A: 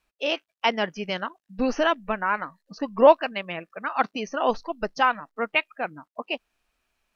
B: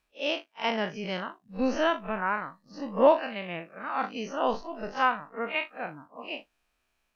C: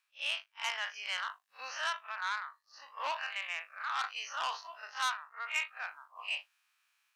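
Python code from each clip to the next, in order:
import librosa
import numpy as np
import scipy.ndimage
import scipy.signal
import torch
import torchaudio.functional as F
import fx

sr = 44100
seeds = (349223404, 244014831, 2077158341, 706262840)

y1 = fx.spec_blur(x, sr, span_ms=89.0)
y2 = scipy.signal.sosfilt(scipy.signal.butter(4, 1100.0, 'highpass', fs=sr, output='sos'), y1)
y2 = fx.rider(y2, sr, range_db=3, speed_s=0.5)
y2 = fx.transformer_sat(y2, sr, knee_hz=4000.0)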